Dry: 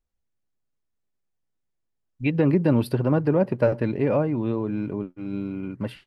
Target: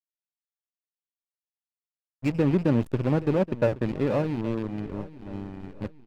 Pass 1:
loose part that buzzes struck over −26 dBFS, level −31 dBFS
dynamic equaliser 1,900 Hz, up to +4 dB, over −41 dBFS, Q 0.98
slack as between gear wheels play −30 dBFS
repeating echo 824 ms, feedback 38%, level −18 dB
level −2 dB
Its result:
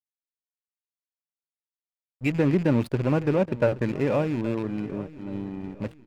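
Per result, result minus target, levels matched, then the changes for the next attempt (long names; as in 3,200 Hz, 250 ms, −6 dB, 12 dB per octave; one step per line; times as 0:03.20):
slack as between gear wheels: distortion −7 dB; 2,000 Hz band +4.0 dB
change: slack as between gear wheels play −22.5 dBFS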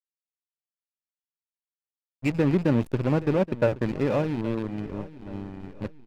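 2,000 Hz band +2.5 dB
remove: dynamic equaliser 1,900 Hz, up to +4 dB, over −41 dBFS, Q 0.98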